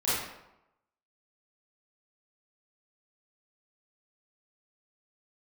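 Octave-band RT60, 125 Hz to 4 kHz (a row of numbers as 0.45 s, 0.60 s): 0.80 s, 0.85 s, 0.90 s, 0.90 s, 0.70 s, 0.60 s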